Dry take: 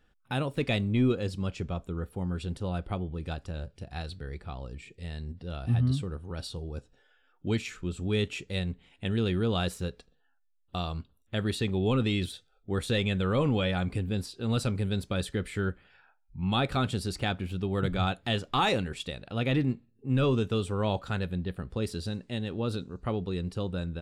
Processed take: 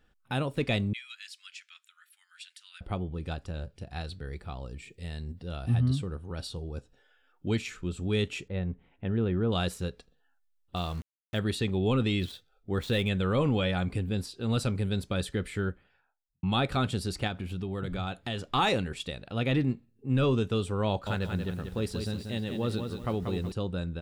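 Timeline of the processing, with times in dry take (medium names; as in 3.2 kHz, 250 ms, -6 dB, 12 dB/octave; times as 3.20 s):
0.93–2.81 s: steep high-pass 1.7 kHz
4.24–5.89 s: treble shelf 9.5 kHz +9 dB
8.48–9.52 s: low-pass 1.5 kHz
10.76–11.39 s: small samples zeroed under -44.5 dBFS
12.19–13.09 s: median filter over 5 samples
15.47–16.43 s: studio fade out
17.27–18.39 s: compression 3:1, threshold -30 dBFS
20.88–23.52 s: bit-crushed delay 186 ms, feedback 35%, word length 9-bit, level -6 dB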